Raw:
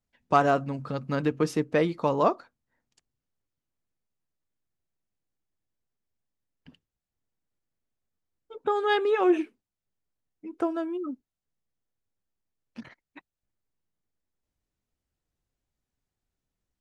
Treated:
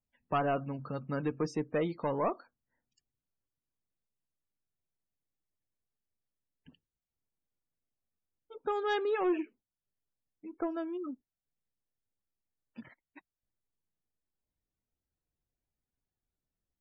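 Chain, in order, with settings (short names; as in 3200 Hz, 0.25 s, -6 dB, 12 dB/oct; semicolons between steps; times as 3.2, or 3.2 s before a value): soft clip -17.5 dBFS, distortion -14 dB; loudest bins only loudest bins 64; gain -5.5 dB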